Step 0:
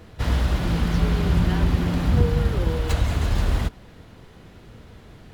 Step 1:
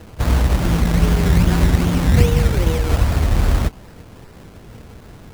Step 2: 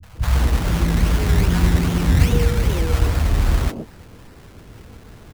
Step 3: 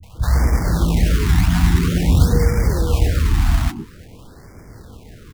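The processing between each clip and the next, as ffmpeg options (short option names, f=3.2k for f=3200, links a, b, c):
-af "acrusher=samples=19:mix=1:aa=0.000001:lfo=1:lforange=11.4:lforate=2.5,volume=5.5dB"
-filter_complex "[0:a]acrossover=split=170|630[a][b][c];[c]adelay=30[d];[b]adelay=150[e];[a][e][d]amix=inputs=3:normalize=0,volume=-1dB"
-af "afftfilt=real='re*(1-between(b*sr/1024,440*pow(3400/440,0.5+0.5*sin(2*PI*0.49*pts/sr))/1.41,440*pow(3400/440,0.5+0.5*sin(2*PI*0.49*pts/sr))*1.41))':imag='im*(1-between(b*sr/1024,440*pow(3400/440,0.5+0.5*sin(2*PI*0.49*pts/sr))/1.41,440*pow(3400/440,0.5+0.5*sin(2*PI*0.49*pts/sr))*1.41))':win_size=1024:overlap=0.75,volume=1.5dB"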